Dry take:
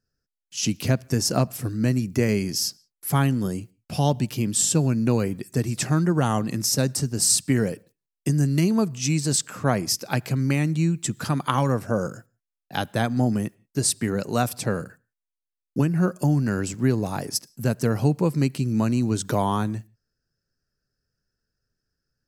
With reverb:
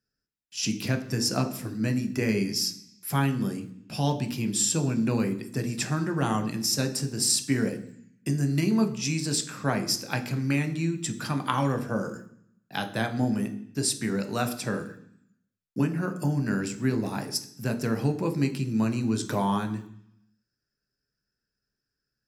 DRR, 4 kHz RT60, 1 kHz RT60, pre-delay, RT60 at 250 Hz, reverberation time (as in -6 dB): 6.5 dB, 0.85 s, 0.65 s, 13 ms, 0.95 s, 0.65 s